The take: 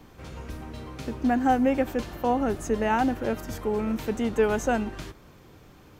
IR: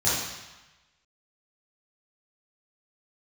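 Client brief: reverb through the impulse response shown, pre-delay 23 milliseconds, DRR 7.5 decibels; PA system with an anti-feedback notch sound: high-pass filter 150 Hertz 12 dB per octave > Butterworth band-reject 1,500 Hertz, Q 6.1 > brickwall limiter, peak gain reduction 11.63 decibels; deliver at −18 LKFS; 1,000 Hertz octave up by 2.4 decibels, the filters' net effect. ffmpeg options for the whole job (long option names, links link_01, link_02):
-filter_complex "[0:a]equalizer=frequency=1000:width_type=o:gain=3.5,asplit=2[link_01][link_02];[1:a]atrim=start_sample=2205,adelay=23[link_03];[link_02][link_03]afir=irnorm=-1:irlink=0,volume=-21.5dB[link_04];[link_01][link_04]amix=inputs=2:normalize=0,highpass=150,asuperstop=centerf=1500:order=8:qfactor=6.1,volume=12dB,alimiter=limit=-8dB:level=0:latency=1"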